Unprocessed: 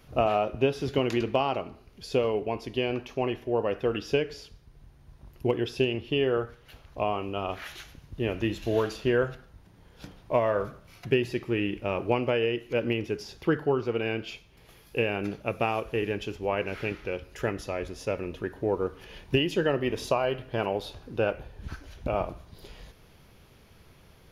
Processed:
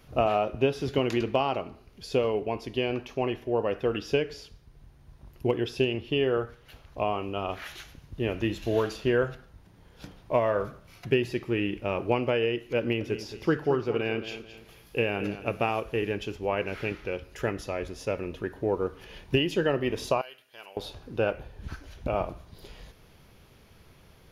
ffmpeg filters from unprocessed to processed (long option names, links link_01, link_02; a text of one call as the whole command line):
ffmpeg -i in.wav -filter_complex "[0:a]asettb=1/sr,asplit=3[link_01][link_02][link_03];[link_01]atrim=end=12.794[link_04];[link_02]atrim=start=12.79:end=15.7,asetpts=PTS-STARTPTS,afade=type=in:duration=0.004:curve=qsin,afade=type=out:start_time=2.906:duration=0.004:curve=qsin,aecho=1:1:219|438|657:0.251|0.0854|0.029,atrim=end_sample=128331[link_05];[link_03]atrim=start=15.696[link_06];[link_04][link_05]acrossfade=duration=0.004:curve1=hsin:curve2=qsin[link_07];[link_07][link_06]acrossfade=duration=0.004:curve1=qsin:curve2=hsin,asettb=1/sr,asplit=3[link_08][link_09][link_10];[link_08]atrim=end=20.214[link_11];[link_09]atrim=start=20.21:end=20.77,asetpts=PTS-STARTPTS,afade=type=in:duration=0.004:curve=qsin,afade=type=out:start_time=0.556:duration=0.004:curve=qsin,aderivative[link_12];[link_10]atrim=start=20.766[link_13];[link_11][link_12]acrossfade=duration=0.004:curve1=hsin:curve2=qsin[link_14];[link_14][link_13]acrossfade=duration=0.004:curve1=qsin:curve2=hsin" out.wav